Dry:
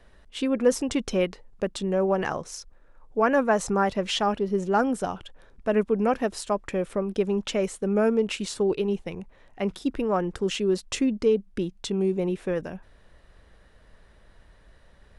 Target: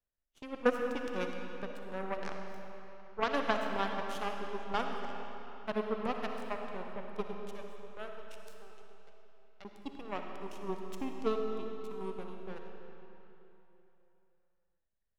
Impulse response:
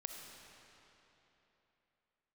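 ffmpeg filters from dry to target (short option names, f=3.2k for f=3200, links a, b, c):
-filter_complex "[0:a]asettb=1/sr,asplit=3[a][b][c];[a]atrim=end=7.334[d];[b]atrim=start=7.33:end=9.65,asetpts=PTS-STARTPTS,afade=t=in:d=0.004:c=qsin,afade=t=out:st=2.316:d=0.004:c=qsin,highpass=f=500:w=0.5412,highpass=f=500:w=1.3066[e];[c]atrim=start=9.646[f];[d][e]acrossfade=d=0.004:c1=hsin:c2=qsin[g];[g][f]acrossfade=d=0.004:c1=qsin:c2=hsin,aeval=exprs='0.355*(cos(1*acos(clip(val(0)/0.355,-1,1)))-cos(1*PI/2))+0.1*(cos(3*acos(clip(val(0)/0.355,-1,1)))-cos(3*PI/2))+0.00794*(cos(6*acos(clip(val(0)/0.355,-1,1)))-cos(6*PI/2))+0.00708*(cos(7*acos(clip(val(0)/0.355,-1,1)))-cos(7*PI/2))':c=same[h];[1:a]atrim=start_sample=2205[i];[h][i]afir=irnorm=-1:irlink=0"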